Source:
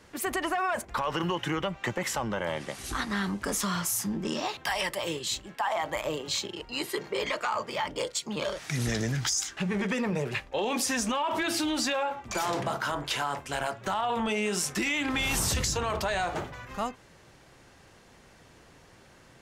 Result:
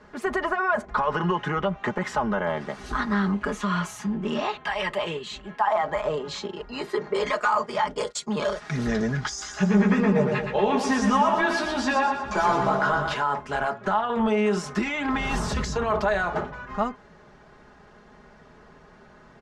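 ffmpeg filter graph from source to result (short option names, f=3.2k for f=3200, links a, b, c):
-filter_complex "[0:a]asettb=1/sr,asplit=3[a][b][c];[a]atrim=end=3.324[d];[b]atrim=start=3.32:end=5.57,asetpts=PTS-STARTPTS,afade=t=in:d=0.004:c=qsin,afade=t=out:st=2.246:d=0.004:c=qsin,bandreject=f=5.2k:w=8.4,tremolo=f=1.8:d=0.34,equalizer=f=2.7k:w=1.9:g=7.5[e];[c]atrim=start=5.566[f];[d][e]acrossfade=d=0.004:c1=hsin:c2=qsin[g];[g][f]acrossfade=d=0.004:c1=qsin:c2=hsin,asettb=1/sr,asplit=3[h][i][j];[h]atrim=end=7.144[k];[i]atrim=start=7.14:end=8.61,asetpts=PTS-STARTPTS,afade=t=in:d=0.004:c=qsin,afade=t=out:st=1.466:d=0.004:c=qsin,agate=range=-33dB:threshold=-38dB:ratio=3:release=100:detection=peak,equalizer=f=9.7k:w=0.62:g=13[l];[j]atrim=start=8.606[m];[k][l]acrossfade=d=0.004:c1=hsin:c2=qsin[n];[n][m]acrossfade=d=0.004:c1=qsin:c2=hsin,asettb=1/sr,asplit=3[o][p][q];[o]atrim=end=9.294[r];[p]atrim=start=9.29:end=13.14,asetpts=PTS-STARTPTS,afade=t=in:d=0.004:c=qsin,afade=t=out:st=3.846:d=0.004:c=qsin,asplit=2[s][t];[t]adelay=15,volume=-4dB[u];[s][u]amix=inputs=2:normalize=0,atrim=end_sample=169785,aecho=1:1:119|238|357|476|595|714:0.501|0.256|0.13|0.0665|0.0339|0.0173,atrim=end_sample=169785[v];[q]atrim=start=13.136[w];[r][v]acrossfade=d=0.004:c1=hsin:c2=qsin[x];[x][w]acrossfade=d=0.004:c1=qsin:c2=hsin,lowpass=4.9k,highshelf=f=1.9k:t=q:w=1.5:g=-6.5,aecho=1:1:4.8:0.67,volume=3.5dB"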